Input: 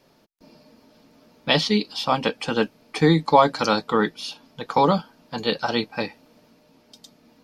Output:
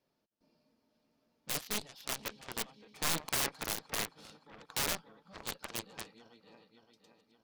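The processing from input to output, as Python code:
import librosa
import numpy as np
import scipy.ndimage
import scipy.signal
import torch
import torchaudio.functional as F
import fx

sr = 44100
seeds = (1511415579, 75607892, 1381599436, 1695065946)

y = fx.reverse_delay_fb(x, sr, ms=285, feedback_pct=67, wet_db=-12.0)
y = fx.cheby_harmonics(y, sr, harmonics=(5, 7), levels_db=(-36, -15), full_scale_db=-2.5)
y = (np.mod(10.0 ** (16.5 / 20.0) * y + 1.0, 2.0) - 1.0) / 10.0 ** (16.5 / 20.0)
y = y * 10.0 ** (-6.5 / 20.0)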